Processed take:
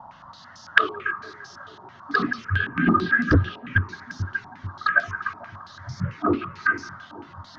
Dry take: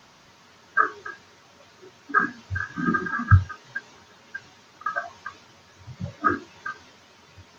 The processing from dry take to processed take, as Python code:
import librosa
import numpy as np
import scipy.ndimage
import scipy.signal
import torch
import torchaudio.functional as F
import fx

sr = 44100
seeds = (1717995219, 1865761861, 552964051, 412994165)

p1 = fx.env_phaser(x, sr, low_hz=390.0, high_hz=1600.0, full_db=-21.0)
p2 = p1 + fx.echo_split(p1, sr, split_hz=1000.0, low_ms=441, high_ms=171, feedback_pct=52, wet_db=-15.0, dry=0)
p3 = fx.fold_sine(p2, sr, drive_db=9, ceiling_db=-5.5)
p4 = fx.filter_held_lowpass(p3, sr, hz=9.0, low_hz=870.0, high_hz=5400.0)
y = p4 * librosa.db_to_amplitude(-6.0)